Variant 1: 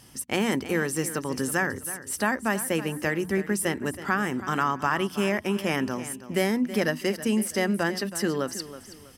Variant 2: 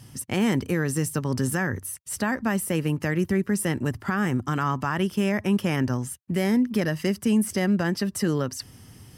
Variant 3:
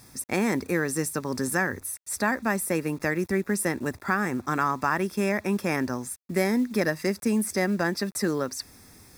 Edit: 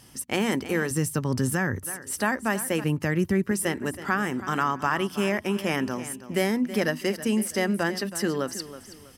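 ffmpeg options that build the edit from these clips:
-filter_complex "[1:a]asplit=2[a][b];[0:a]asplit=3[c][d][e];[c]atrim=end=0.912[f];[a]atrim=start=0.908:end=1.832[g];[d]atrim=start=1.828:end=2.842[h];[b]atrim=start=2.838:end=3.512[i];[e]atrim=start=3.508[j];[f][g]acrossfade=d=0.004:c1=hsin:c2=hsin[k];[k][h]acrossfade=d=0.004:c1=hsin:c2=hsin[l];[l][i]acrossfade=d=0.004:c1=hsin:c2=hsin[m];[m][j]acrossfade=d=0.004:c1=hsin:c2=hsin"

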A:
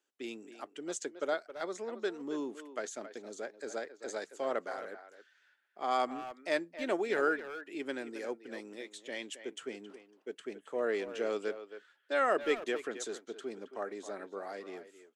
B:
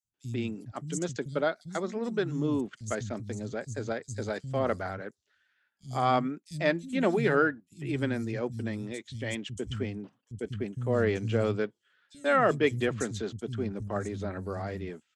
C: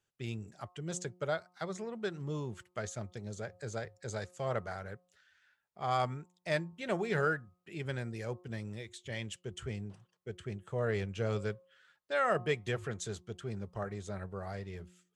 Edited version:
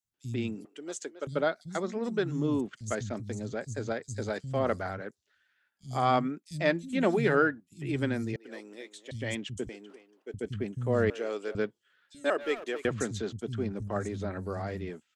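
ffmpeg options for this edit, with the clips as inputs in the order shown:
-filter_complex "[0:a]asplit=5[a][b][c][d][e];[1:a]asplit=6[f][g][h][i][j][k];[f]atrim=end=0.652[l];[a]atrim=start=0.648:end=1.272[m];[g]atrim=start=1.268:end=8.362[n];[b]atrim=start=8.358:end=9.112[o];[h]atrim=start=9.108:end=9.692[p];[c]atrim=start=9.688:end=10.342[q];[i]atrim=start=10.338:end=11.102[r];[d]atrim=start=11.098:end=11.552[s];[j]atrim=start=11.548:end=12.302[t];[e]atrim=start=12.298:end=12.852[u];[k]atrim=start=12.848[v];[l][m]acrossfade=d=0.004:c1=hsin:c2=hsin[w];[w][n]acrossfade=d=0.004:c1=hsin:c2=hsin[x];[x][o]acrossfade=d=0.004:c1=hsin:c2=hsin[y];[y][p]acrossfade=d=0.004:c1=hsin:c2=hsin[z];[z][q]acrossfade=d=0.004:c1=hsin:c2=hsin[aa];[aa][r]acrossfade=d=0.004:c1=hsin:c2=hsin[ab];[ab][s]acrossfade=d=0.004:c1=hsin:c2=hsin[ac];[ac][t]acrossfade=d=0.004:c1=hsin:c2=hsin[ad];[ad][u]acrossfade=d=0.004:c1=hsin:c2=hsin[ae];[ae][v]acrossfade=d=0.004:c1=hsin:c2=hsin"

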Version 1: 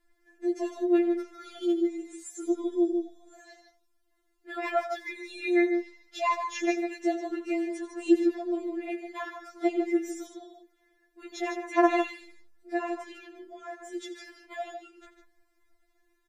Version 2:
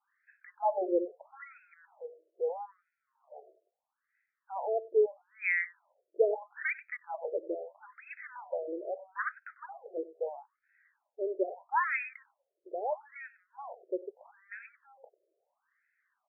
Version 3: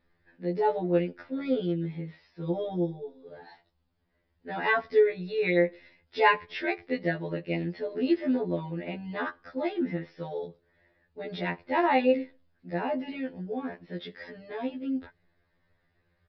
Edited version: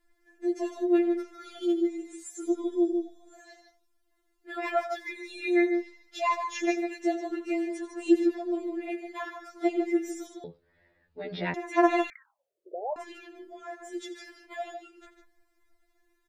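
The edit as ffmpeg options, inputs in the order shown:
-filter_complex "[0:a]asplit=3[a][b][c];[a]atrim=end=10.442[d];[2:a]atrim=start=10.438:end=11.542[e];[b]atrim=start=11.538:end=12.102[f];[1:a]atrim=start=12.098:end=12.962[g];[c]atrim=start=12.958[h];[d][e]acrossfade=d=0.004:c1=hsin:c2=hsin[i];[i][f]acrossfade=d=0.004:c1=hsin:c2=hsin[j];[j][g]acrossfade=d=0.004:c1=hsin:c2=hsin[k];[k][h]acrossfade=d=0.004:c1=hsin:c2=hsin"

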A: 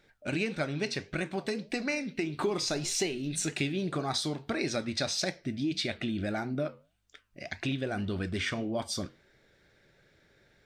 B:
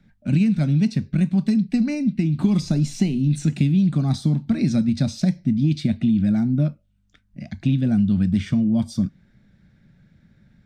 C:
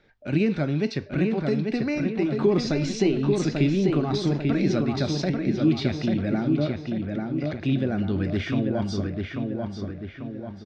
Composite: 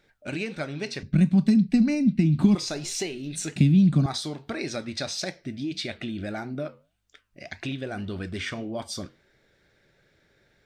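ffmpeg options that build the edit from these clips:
-filter_complex "[1:a]asplit=2[a][b];[0:a]asplit=3[c][d][e];[c]atrim=end=1.032[f];[a]atrim=start=1.028:end=2.552[g];[d]atrim=start=2.548:end=3.562[h];[b]atrim=start=3.558:end=4.062[i];[e]atrim=start=4.058[j];[f][g]acrossfade=d=0.004:c1=hsin:c2=hsin[k];[k][h]acrossfade=d=0.004:c1=hsin:c2=hsin[l];[l][i]acrossfade=d=0.004:c1=hsin:c2=hsin[m];[m][j]acrossfade=d=0.004:c1=hsin:c2=hsin"

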